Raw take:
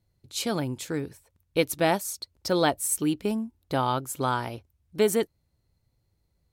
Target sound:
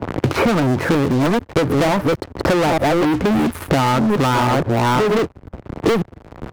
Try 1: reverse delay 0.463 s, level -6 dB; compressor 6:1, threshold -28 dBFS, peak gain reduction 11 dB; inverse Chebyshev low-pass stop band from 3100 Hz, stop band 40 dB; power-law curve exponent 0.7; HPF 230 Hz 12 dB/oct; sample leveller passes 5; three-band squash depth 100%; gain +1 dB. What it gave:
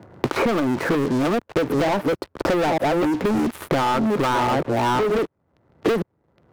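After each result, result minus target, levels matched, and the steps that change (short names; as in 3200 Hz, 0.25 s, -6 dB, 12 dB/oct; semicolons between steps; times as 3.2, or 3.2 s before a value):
compressor: peak gain reduction +5 dB; 125 Hz band -5.0 dB
change: compressor 6:1, threshold -22 dBFS, peak gain reduction 6 dB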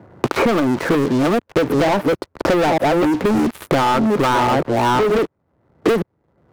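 125 Hz band -5.0 dB
change: HPF 66 Hz 12 dB/oct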